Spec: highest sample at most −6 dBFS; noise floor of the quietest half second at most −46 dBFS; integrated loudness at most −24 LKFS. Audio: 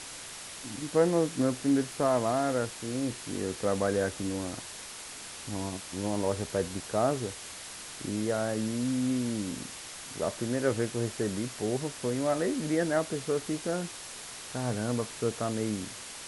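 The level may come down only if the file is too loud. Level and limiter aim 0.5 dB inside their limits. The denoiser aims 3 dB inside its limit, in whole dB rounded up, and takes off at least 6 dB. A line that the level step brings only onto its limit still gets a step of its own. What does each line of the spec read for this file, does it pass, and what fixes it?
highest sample −13.0 dBFS: in spec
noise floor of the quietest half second −43 dBFS: out of spec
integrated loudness −31.5 LKFS: in spec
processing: broadband denoise 6 dB, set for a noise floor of −43 dBFS

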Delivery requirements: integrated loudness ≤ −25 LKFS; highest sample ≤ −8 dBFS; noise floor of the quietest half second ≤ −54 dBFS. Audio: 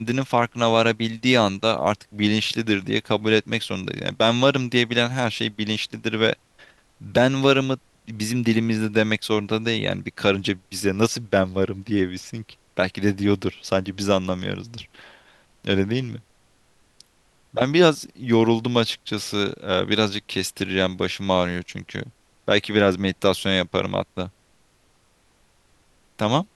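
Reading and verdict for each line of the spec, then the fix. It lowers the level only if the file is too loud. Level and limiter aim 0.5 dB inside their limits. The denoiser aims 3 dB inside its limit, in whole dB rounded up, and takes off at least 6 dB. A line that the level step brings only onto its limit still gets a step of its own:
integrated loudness −22.0 LKFS: out of spec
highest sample −2.5 dBFS: out of spec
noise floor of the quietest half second −61 dBFS: in spec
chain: level −3.5 dB
brickwall limiter −8.5 dBFS

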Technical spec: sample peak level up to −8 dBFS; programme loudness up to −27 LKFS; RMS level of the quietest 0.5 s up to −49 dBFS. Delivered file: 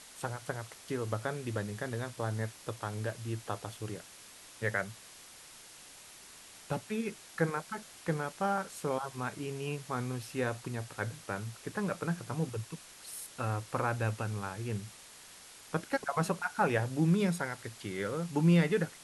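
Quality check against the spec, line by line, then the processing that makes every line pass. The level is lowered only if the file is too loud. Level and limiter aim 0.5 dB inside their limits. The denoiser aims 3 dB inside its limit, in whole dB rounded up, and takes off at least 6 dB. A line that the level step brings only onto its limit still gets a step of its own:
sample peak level −15.0 dBFS: in spec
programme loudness −35.0 LKFS: in spec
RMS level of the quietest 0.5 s −53 dBFS: in spec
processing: no processing needed

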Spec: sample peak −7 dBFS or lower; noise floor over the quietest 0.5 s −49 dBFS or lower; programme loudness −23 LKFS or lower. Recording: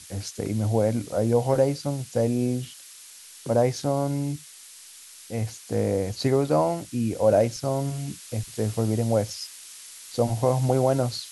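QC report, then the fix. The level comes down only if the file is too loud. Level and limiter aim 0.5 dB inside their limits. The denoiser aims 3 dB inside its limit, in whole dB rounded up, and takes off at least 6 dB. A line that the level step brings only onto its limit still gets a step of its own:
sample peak −8.5 dBFS: in spec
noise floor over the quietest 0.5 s −47 dBFS: out of spec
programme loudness −25.5 LKFS: in spec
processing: broadband denoise 6 dB, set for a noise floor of −47 dBFS

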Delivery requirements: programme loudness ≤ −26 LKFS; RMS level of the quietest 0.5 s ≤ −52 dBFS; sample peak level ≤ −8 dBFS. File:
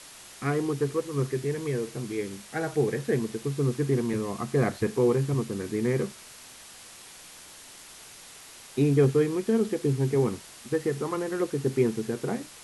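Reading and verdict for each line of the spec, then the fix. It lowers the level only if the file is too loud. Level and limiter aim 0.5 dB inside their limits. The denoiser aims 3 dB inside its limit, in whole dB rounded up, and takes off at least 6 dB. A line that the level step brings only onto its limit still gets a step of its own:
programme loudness −27.5 LKFS: in spec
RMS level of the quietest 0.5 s −48 dBFS: out of spec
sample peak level −11.0 dBFS: in spec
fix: broadband denoise 7 dB, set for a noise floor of −48 dBFS

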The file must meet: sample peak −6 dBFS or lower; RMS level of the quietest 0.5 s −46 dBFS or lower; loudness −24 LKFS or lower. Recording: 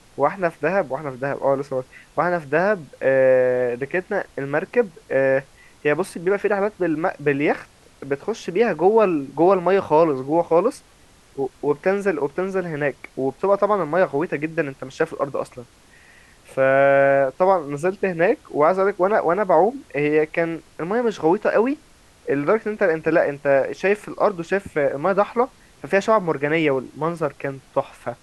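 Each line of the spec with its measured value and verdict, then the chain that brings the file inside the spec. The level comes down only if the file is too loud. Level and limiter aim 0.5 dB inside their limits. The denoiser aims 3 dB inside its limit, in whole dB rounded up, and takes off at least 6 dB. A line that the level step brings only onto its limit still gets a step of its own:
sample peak −5.0 dBFS: out of spec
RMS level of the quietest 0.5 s −52 dBFS: in spec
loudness −21.0 LKFS: out of spec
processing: level −3.5 dB

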